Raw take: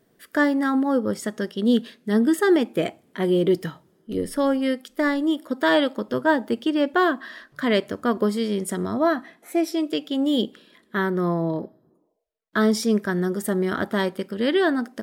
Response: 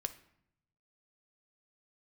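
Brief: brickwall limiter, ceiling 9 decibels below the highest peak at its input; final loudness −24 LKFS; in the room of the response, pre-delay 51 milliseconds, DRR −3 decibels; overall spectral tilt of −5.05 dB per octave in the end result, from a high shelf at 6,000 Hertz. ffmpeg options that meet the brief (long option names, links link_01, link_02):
-filter_complex "[0:a]highshelf=frequency=6000:gain=4.5,alimiter=limit=-16dB:level=0:latency=1,asplit=2[link_01][link_02];[1:a]atrim=start_sample=2205,adelay=51[link_03];[link_02][link_03]afir=irnorm=-1:irlink=0,volume=3.5dB[link_04];[link_01][link_04]amix=inputs=2:normalize=0,volume=-2.5dB"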